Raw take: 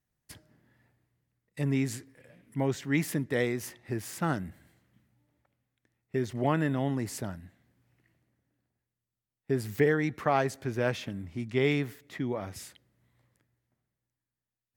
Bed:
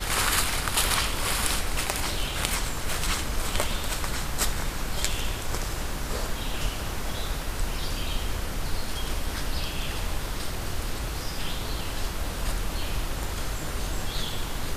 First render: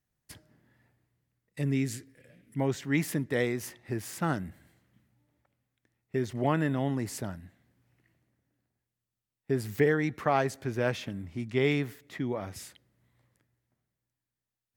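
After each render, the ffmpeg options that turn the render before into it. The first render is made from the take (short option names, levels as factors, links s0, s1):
-filter_complex "[0:a]asettb=1/sr,asplit=3[s0][s1][s2];[s0]atrim=end=1.614[s3];[s1]atrim=start=1.61:end=2.59,asetpts=PTS-STARTPTS,afade=t=in:d=0.004:c=qsin,afade=t=out:st=0.976:d=0.004:c=qsin,equalizer=f=930:w=1.6:g=-10[s4];[s2]atrim=start=2.586[s5];[s3][s4]acrossfade=d=0.004:c1=hsin:c2=qsin[s6];[s6][s5]acrossfade=d=0.004:c1=qsin:c2=hsin"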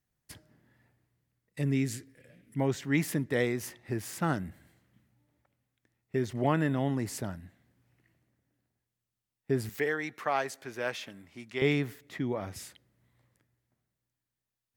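-filter_complex "[0:a]asettb=1/sr,asplit=3[s0][s1][s2];[s0]atrim=end=9.694[s3];[s1]atrim=start=9.69:end=11.62,asetpts=PTS-STARTPTS,afade=t=in:d=0.004:c=qsin,afade=t=out:st=1.926:d=0.004:c=qsin,highpass=f=810:p=1[s4];[s2]atrim=start=11.616[s5];[s3][s4]acrossfade=d=0.004:c1=hsin:c2=qsin[s6];[s6][s5]acrossfade=d=0.004:c1=qsin:c2=hsin"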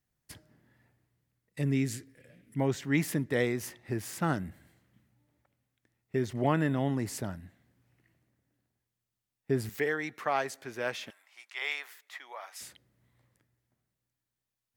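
-filter_complex "[0:a]asettb=1/sr,asplit=3[s0][s1][s2];[s0]atrim=end=11.104[s3];[s1]atrim=start=11.1:end=12.61,asetpts=PTS-STARTPTS,afade=t=in:d=0.004:c=qsin,afade=t=out:st=1.506:d=0.004:c=qsin,highpass=f=790:w=0.5412,highpass=f=790:w=1.3066[s4];[s2]atrim=start=12.606[s5];[s3][s4]acrossfade=d=0.004:c1=hsin:c2=qsin[s6];[s6][s5]acrossfade=d=0.004:c1=qsin:c2=hsin"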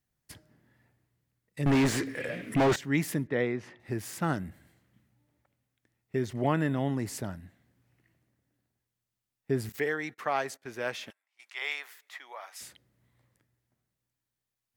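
-filter_complex "[0:a]asettb=1/sr,asplit=3[s0][s1][s2];[s0]atrim=end=1.664[s3];[s1]atrim=start=1.66:end=2.76,asetpts=PTS-STARTPTS,afade=t=in:d=0.004:c=qsin,afade=t=out:st=1.096:d=0.004:c=qsin,asplit=2[s4][s5];[s5]highpass=f=720:p=1,volume=63.1,asoftclip=type=tanh:threshold=0.158[s6];[s4][s6]amix=inputs=2:normalize=0,lowpass=f=1700:p=1,volume=0.501[s7];[s2]atrim=start=2.756[s8];[s3][s7]acrossfade=d=0.004:c1=hsin:c2=qsin[s9];[s9][s8]acrossfade=d=0.004:c1=qsin:c2=hsin,asettb=1/sr,asplit=3[s10][s11][s12];[s10]atrim=end=3.274[s13];[s11]atrim=start=3.27:end=3.8,asetpts=PTS-STARTPTS,afade=t=in:d=0.004:c=qsin,afade=t=out:st=0.526:d=0.004:c=qsin,highpass=110,lowpass=2700[s14];[s12]atrim=start=3.796[s15];[s13][s14]acrossfade=d=0.004:c1=hsin:c2=qsin[s16];[s16][s15]acrossfade=d=0.004:c1=qsin:c2=hsin,asettb=1/sr,asplit=3[s17][s18][s19];[s17]atrim=end=9.724[s20];[s18]atrim=start=9.72:end=11.42,asetpts=PTS-STARTPTS,afade=t=in:d=0.004:c=qsin,afade=t=out:st=1.696:d=0.004:c=qsin,agate=range=0.1:threshold=0.00282:ratio=16:release=100:detection=peak[s21];[s19]atrim=start=11.416[s22];[s20][s21]acrossfade=d=0.004:c1=hsin:c2=qsin[s23];[s23][s22]acrossfade=d=0.004:c1=qsin:c2=hsin"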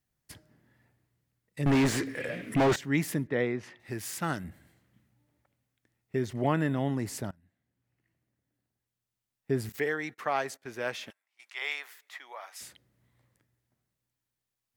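-filter_complex "[0:a]asettb=1/sr,asplit=3[s0][s1][s2];[s0]atrim=end=3.634[s3];[s1]atrim=start=3.63:end=4.44,asetpts=PTS-STARTPTS,afade=t=in:d=0.004:c=qsin,afade=t=out:st=0.806:d=0.004:c=qsin,tiltshelf=f=1300:g=-4[s4];[s2]atrim=start=4.436[s5];[s3][s4]acrossfade=d=0.004:c1=hsin:c2=qsin[s6];[s6][s5]acrossfade=d=0.004:c1=qsin:c2=hsin,asplit=2[s7][s8];[s7]atrim=end=7.31,asetpts=PTS-STARTPTS,afade=t=out:st=7.306:d=0.004:c=hsin:silence=0.0707946[s9];[s8]atrim=start=7.31,asetpts=PTS-STARTPTS,afade=t=in:d=2.22:silence=0.0707946[s10];[s9][s10]concat=n=2:v=0:a=1"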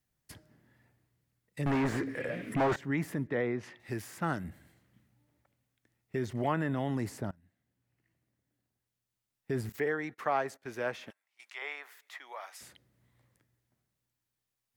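-filter_complex "[0:a]acrossover=split=640|1900[s0][s1][s2];[s0]alimiter=level_in=1.19:limit=0.0631:level=0:latency=1,volume=0.841[s3];[s2]acompressor=threshold=0.00355:ratio=6[s4];[s3][s1][s4]amix=inputs=3:normalize=0"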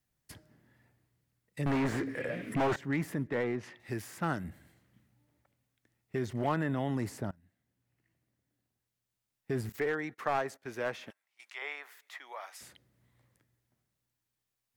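-af "aeval=exprs='clip(val(0),-1,0.0447)':c=same"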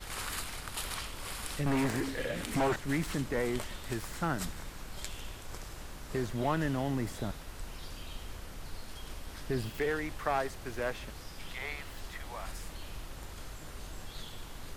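-filter_complex "[1:a]volume=0.2[s0];[0:a][s0]amix=inputs=2:normalize=0"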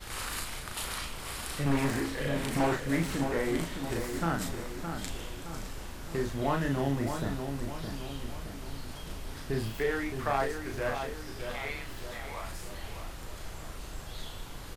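-filter_complex "[0:a]asplit=2[s0][s1];[s1]adelay=36,volume=0.668[s2];[s0][s2]amix=inputs=2:normalize=0,asplit=2[s3][s4];[s4]adelay=616,lowpass=f=2000:p=1,volume=0.473,asplit=2[s5][s6];[s6]adelay=616,lowpass=f=2000:p=1,volume=0.51,asplit=2[s7][s8];[s8]adelay=616,lowpass=f=2000:p=1,volume=0.51,asplit=2[s9][s10];[s10]adelay=616,lowpass=f=2000:p=1,volume=0.51,asplit=2[s11][s12];[s12]adelay=616,lowpass=f=2000:p=1,volume=0.51,asplit=2[s13][s14];[s14]adelay=616,lowpass=f=2000:p=1,volume=0.51[s15];[s5][s7][s9][s11][s13][s15]amix=inputs=6:normalize=0[s16];[s3][s16]amix=inputs=2:normalize=0"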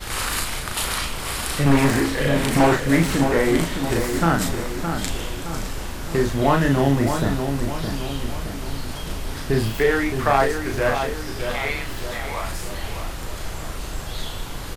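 -af "volume=3.76"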